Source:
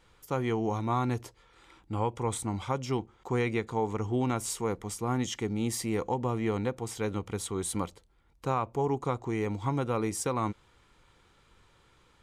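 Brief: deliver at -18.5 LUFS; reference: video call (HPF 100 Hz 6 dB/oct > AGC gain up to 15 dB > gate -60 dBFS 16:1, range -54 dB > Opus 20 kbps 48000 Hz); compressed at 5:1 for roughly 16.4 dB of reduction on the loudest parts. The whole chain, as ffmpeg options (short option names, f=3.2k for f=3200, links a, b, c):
-af "acompressor=threshold=-44dB:ratio=5,highpass=f=100:p=1,dynaudnorm=m=15dB,agate=range=-54dB:threshold=-60dB:ratio=16,volume=29dB" -ar 48000 -c:a libopus -b:a 20k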